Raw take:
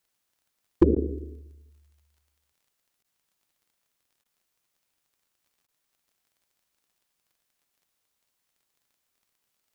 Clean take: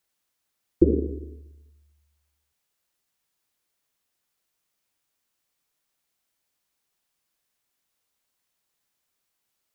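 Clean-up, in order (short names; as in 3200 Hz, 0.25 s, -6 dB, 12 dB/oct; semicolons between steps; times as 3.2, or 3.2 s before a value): clip repair -8 dBFS; de-click; interpolate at 0.95/3.03/4.24/5.67, 12 ms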